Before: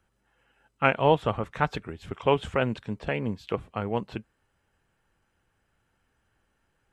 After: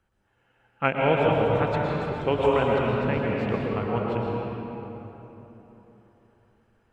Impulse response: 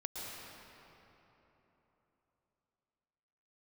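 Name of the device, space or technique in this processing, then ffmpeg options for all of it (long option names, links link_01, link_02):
swimming-pool hall: -filter_complex "[1:a]atrim=start_sample=2205[link_01];[0:a][link_01]afir=irnorm=-1:irlink=0,highshelf=frequency=4700:gain=-7,asettb=1/sr,asplit=3[link_02][link_03][link_04];[link_02]atrim=end=0.884[link_05];[link_03]atrim=start=0.88:end=2.44,asetpts=PTS-STARTPTS,afade=type=in:duration=0.004:curve=qsin,afade=type=out:start_time=1.556:duration=0.004:curve=qsin,equalizer=frequency=1100:width_type=o:width=1.2:gain=-5.5[link_06];[link_04]atrim=start=2.436[link_07];[link_05][link_06]acrossfade=duration=0.004:curve1=hsin:curve2=qsin[link_08];[link_08][link_07]acrossfade=duration=0.004:curve1=qsin:curve2=hsin,volume=3dB"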